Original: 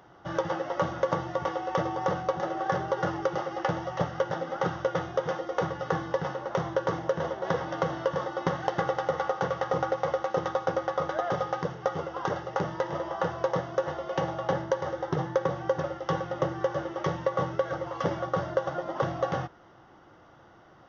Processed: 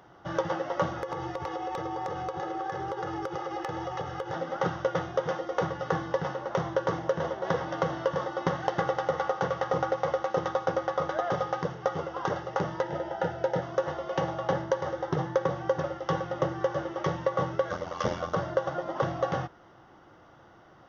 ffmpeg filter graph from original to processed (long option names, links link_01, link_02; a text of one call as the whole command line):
ffmpeg -i in.wav -filter_complex "[0:a]asettb=1/sr,asplit=3[link_01][link_02][link_03];[link_01]atrim=end=0.974[link_04];[link_02]atrim=start=0.97:end=4.34,asetpts=PTS-STARTPTS,afade=type=in:duration=0.004:curve=qsin,afade=type=out:start_time=3.366:duration=0.004:curve=qsin,aecho=1:1:2.4:0.65,atrim=end_sample=148617,acompressor=threshold=-29dB:ratio=8:attack=3.2:release=140:knee=1:detection=peak,aeval=exprs='0.0841*(abs(mod(val(0)/0.0841+3,4)-2)-1)':channel_layout=same[link_05];[link_03]atrim=start=4.336[link_06];[link_04][link_05]acrossfade=duration=0.004:curve1=hsin:curve2=qsin[link_07];[link_07][link_06]acrossfade=duration=0.004:curve1=qsin:curve2=hsin,asettb=1/sr,asplit=3[link_08][link_09][link_10];[link_08]atrim=end=12.824[link_11];[link_09]atrim=start=12.82:end=13.62,asetpts=PTS-STARTPTS,afade=type=in:duration=0.004:curve=qsin,afade=type=out:start_time=0.796:duration=0.004:curve=qsin,asuperstop=centerf=1100:order=8:qfactor=4.1,highshelf=frequency=4000:gain=-5.5[link_12];[link_10]atrim=start=13.616[link_13];[link_11][link_12]acrossfade=duration=0.004:curve1=hsin:curve2=qsin[link_14];[link_14][link_13]acrossfade=duration=0.004:curve1=qsin:curve2=hsin,asettb=1/sr,asplit=3[link_15][link_16][link_17];[link_15]atrim=end=17.704[link_18];[link_16]atrim=start=17.7:end=18.35,asetpts=PTS-STARTPTS,afade=type=in:duration=0.004:curve=qsin,afade=type=out:start_time=0.646:duration=0.004:curve=qsin,highshelf=frequency=3500:gain=11,aecho=1:1:7.1:0.49,atrim=end_sample=28665,aeval=exprs='val(0)*sin(2*PI*43*n/s)':channel_layout=same[link_19];[link_17]atrim=start=18.346[link_20];[link_18][link_19]acrossfade=duration=0.004:curve1=hsin:curve2=qsin[link_21];[link_21][link_20]acrossfade=duration=0.004:curve1=qsin:curve2=hsin" out.wav